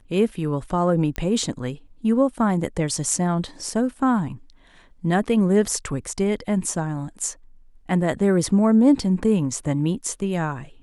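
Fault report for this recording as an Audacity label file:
1.160000	1.160000	pop -14 dBFS

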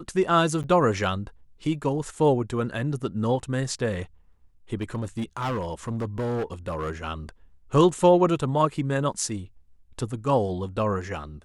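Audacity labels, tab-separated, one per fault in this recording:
0.630000	0.640000	gap 8.9 ms
4.810000	6.910000	clipped -24 dBFS

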